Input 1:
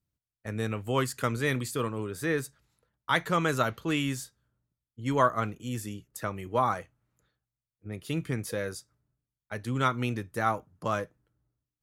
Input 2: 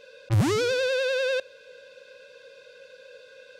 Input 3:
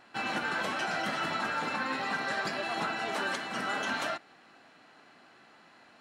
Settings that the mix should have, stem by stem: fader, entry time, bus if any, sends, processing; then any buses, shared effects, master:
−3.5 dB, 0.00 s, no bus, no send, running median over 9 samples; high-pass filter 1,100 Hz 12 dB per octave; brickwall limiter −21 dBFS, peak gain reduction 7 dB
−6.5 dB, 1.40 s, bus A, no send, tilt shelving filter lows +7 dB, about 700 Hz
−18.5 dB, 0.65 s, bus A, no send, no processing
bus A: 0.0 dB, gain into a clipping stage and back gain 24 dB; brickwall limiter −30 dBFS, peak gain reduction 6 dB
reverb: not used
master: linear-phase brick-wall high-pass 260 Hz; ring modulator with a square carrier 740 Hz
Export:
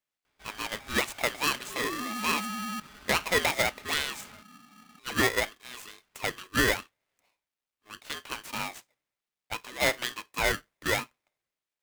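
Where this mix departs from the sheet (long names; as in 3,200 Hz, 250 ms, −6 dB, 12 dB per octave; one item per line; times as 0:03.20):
stem 1 −3.5 dB → +7.5 dB
stem 3: entry 0.65 s → 0.25 s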